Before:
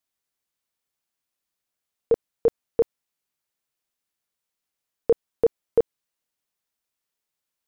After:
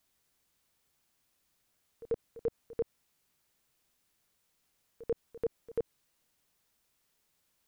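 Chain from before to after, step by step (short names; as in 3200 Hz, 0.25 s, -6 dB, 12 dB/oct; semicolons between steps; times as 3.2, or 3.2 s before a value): low shelf 240 Hz +7 dB; limiter -33 dBFS, peak gain reduction 24.5 dB; reverse echo 90 ms -17 dB; gain +8 dB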